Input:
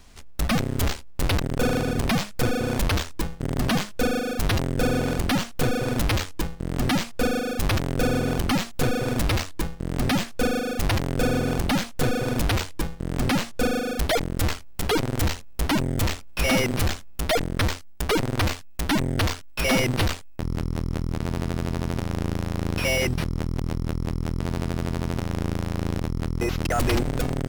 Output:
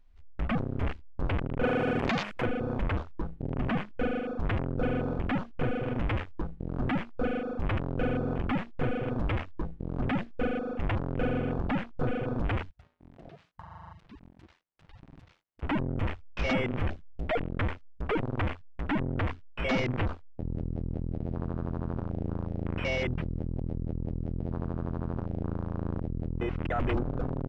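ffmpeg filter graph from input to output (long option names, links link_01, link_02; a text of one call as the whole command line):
ffmpeg -i in.wav -filter_complex "[0:a]asettb=1/sr,asplit=3[link_01][link_02][link_03];[link_01]atrim=end=1.644[link_04];[link_02]atrim=start=1.64:end=2.46,asetpts=PTS-STARTPTS,afade=type=in:duration=0.004:curve=qsin,afade=type=out:start_time=0.816:duration=0.004:curve=qsin,aemphasis=mode=production:type=bsi,aeval=exprs='1*sin(PI/2*5.01*val(0)/1)':channel_layout=same,acompressor=threshold=-15dB:ratio=10:attack=3.2:release=140:knee=1:detection=peak[link_05];[link_03]atrim=start=2.456[link_06];[link_04][link_05]acrossfade=duration=0.004:curve1=hsin:curve2=qsin[link_07];[link_07][link_06]acrossfade=duration=0.004:curve1=qsin:curve2=hsin,asettb=1/sr,asplit=3[link_08][link_09][link_10];[link_08]atrim=end=12.704[link_11];[link_09]atrim=start=12.7:end=15.63,asetpts=PTS-STARTPTS,afade=type=in:duration=0.004:curve=qsin,afade=type=out:start_time=2.926:duration=0.004:curve=qsin,highpass=frequency=720:poles=1,acompressor=threshold=-28dB:ratio=12:attack=3.2:release=140:knee=1:detection=peak,aeval=exprs='val(0)*sin(2*PI*410*n/s)':channel_layout=same[link_12];[link_10]atrim=start=15.626[link_13];[link_11][link_12]acrossfade=duration=0.004:curve1=hsin:curve2=qsin[link_14];[link_14][link_13]acrossfade=duration=0.004:curve1=qsin:curve2=hsin,lowpass=3100,afwtdn=0.0224,volume=-6dB" out.wav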